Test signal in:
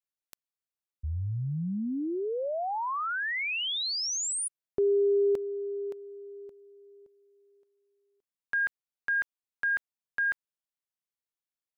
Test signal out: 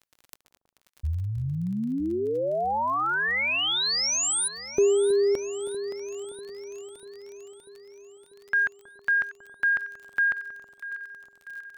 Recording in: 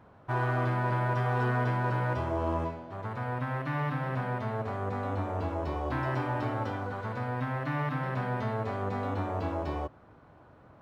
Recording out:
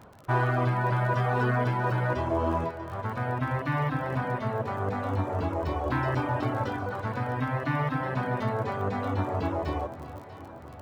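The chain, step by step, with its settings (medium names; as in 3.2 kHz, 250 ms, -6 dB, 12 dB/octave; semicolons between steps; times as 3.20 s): reverb removal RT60 1 s; crackle 29 per s -44 dBFS; echo whose repeats swap between lows and highs 321 ms, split 1 kHz, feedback 77%, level -12 dB; trim +5.5 dB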